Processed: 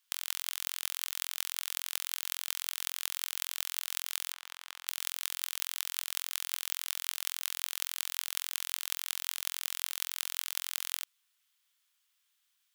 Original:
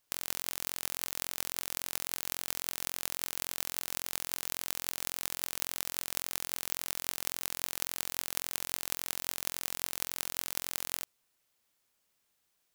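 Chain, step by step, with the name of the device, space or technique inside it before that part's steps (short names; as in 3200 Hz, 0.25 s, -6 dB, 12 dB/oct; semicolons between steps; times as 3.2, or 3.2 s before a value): headphones lying on a table (HPF 1100 Hz 24 dB/oct; bell 3300 Hz +6 dB 0.47 oct); 4.32–4.88 tilt -4.5 dB/oct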